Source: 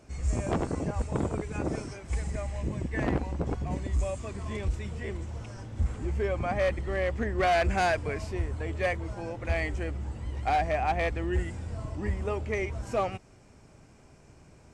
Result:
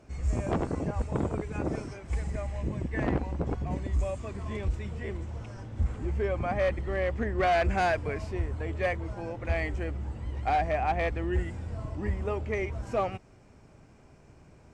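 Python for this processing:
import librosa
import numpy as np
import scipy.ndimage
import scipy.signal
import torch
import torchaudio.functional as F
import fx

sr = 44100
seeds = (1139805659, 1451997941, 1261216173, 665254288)

y = fx.high_shelf(x, sr, hz=4700.0, db=-8.5)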